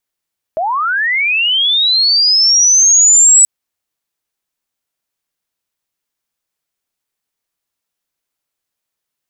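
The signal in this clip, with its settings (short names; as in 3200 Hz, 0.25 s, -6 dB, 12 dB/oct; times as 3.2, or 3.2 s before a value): chirp linear 610 Hz -> 7900 Hz -13.5 dBFS -> -3.5 dBFS 2.88 s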